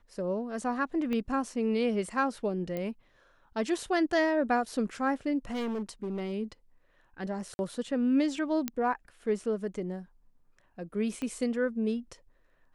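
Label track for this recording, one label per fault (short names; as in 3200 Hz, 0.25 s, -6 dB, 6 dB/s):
1.130000	1.130000	pop -22 dBFS
2.770000	2.770000	pop -22 dBFS
5.500000	6.340000	clipped -30 dBFS
7.540000	7.590000	gap 51 ms
8.680000	8.680000	pop -15 dBFS
11.220000	11.220000	pop -23 dBFS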